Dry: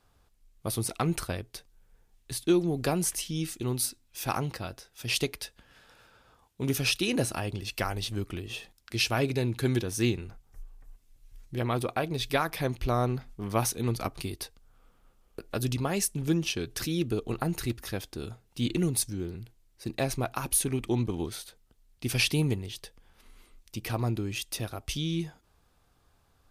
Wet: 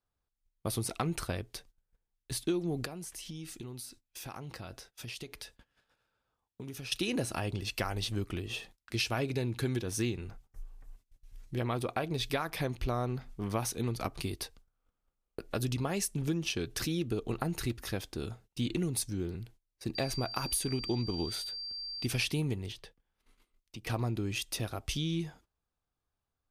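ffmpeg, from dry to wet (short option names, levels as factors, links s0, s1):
-filter_complex "[0:a]asettb=1/sr,asplit=3[s0][s1][s2];[s0]atrim=end=2.854[s3];[s1]atrim=start=2.85:end=6.92,asetpts=PTS-STARTPTS,afade=t=in:d=0.004:c=qsin,afade=t=out:st=4.066:d=0.004:c=qsin,acompressor=threshold=0.0112:ratio=8:attack=3.2:release=140:knee=1:detection=peak[s4];[s2]atrim=start=6.916[s5];[s3][s4]acrossfade=d=0.004:c1=hsin:c2=qsin[s6];[s6][s5]acrossfade=d=0.004:c1=qsin:c2=hsin,asettb=1/sr,asplit=3[s7][s8][s9];[s7]atrim=end=19.954[s10];[s8]atrim=start=19.95:end=22.06,asetpts=PTS-STARTPTS,afade=t=in:d=0.004:c=qsin,afade=t=out:st=2.106:d=0.004:c=qsin,aeval=exprs='val(0)+0.0141*sin(2*PI*4700*n/s)':c=same[s11];[s9]atrim=start=22.056[s12];[s10][s11]acrossfade=d=0.004:c1=hsin:c2=qsin[s13];[s13][s12]acrossfade=d=0.004:c1=qsin:c2=hsin,asettb=1/sr,asplit=3[s14][s15][s16];[s14]atrim=end=22.724[s17];[s15]atrim=start=22.72:end=23.87,asetpts=PTS-STARTPTS,afade=t=in:d=0.004:c=qsin,afade=t=out:st=1.146:d=0.004:c=qsin,acrossover=split=100|4200[s18][s19][s20];[s18]acompressor=threshold=0.00158:ratio=4[s21];[s19]acompressor=threshold=0.00501:ratio=4[s22];[s20]acompressor=threshold=0.00112:ratio=4[s23];[s21][s22][s23]amix=inputs=3:normalize=0[s24];[s16]atrim=start=23.866[s25];[s17][s24]acrossfade=d=0.004:c1=hsin:c2=qsin[s26];[s26][s25]acrossfade=d=0.004:c1=qsin:c2=hsin,agate=range=0.0891:threshold=0.002:ratio=16:detection=peak,highshelf=f=11000:g=-5,acompressor=threshold=0.0355:ratio=4"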